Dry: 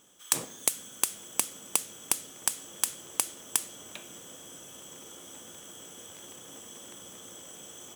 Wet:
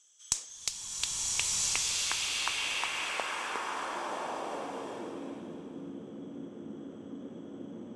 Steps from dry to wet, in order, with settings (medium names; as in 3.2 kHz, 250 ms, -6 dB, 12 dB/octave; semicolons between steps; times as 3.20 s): band-pass sweep 6.5 kHz -> 240 Hz, 0.41–4.38 s; in parallel at -9.5 dB: one-sided clip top -30 dBFS; on the sum: distance through air 71 m; swelling reverb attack 1350 ms, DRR -7.5 dB; trim +5.5 dB